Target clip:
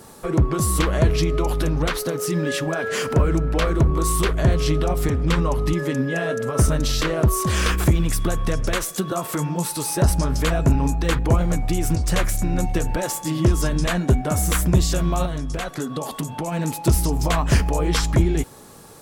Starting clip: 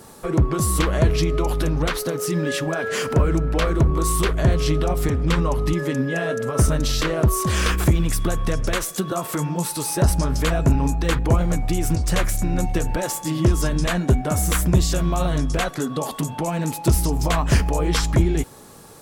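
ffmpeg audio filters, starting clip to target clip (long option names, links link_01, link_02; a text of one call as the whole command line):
ffmpeg -i in.wav -filter_complex "[0:a]asettb=1/sr,asplit=3[link_01][link_02][link_03];[link_01]atrim=end=15.254[link_04];[link_02]atrim=start=15.25:end=16.52,asetpts=PTS-STARTPTS,afade=type=in:duration=0.004:curve=qsin,afade=type=out:start_time=1.266:duration=0.004:curve=qsin,acompressor=threshold=-23dB:ratio=6[link_05];[link_03]atrim=start=16.516[link_06];[link_04][link_05]acrossfade=duration=0.004:curve1=hsin:curve2=qsin[link_07];[link_07][link_06]acrossfade=duration=0.004:curve1=qsin:curve2=hsin" out.wav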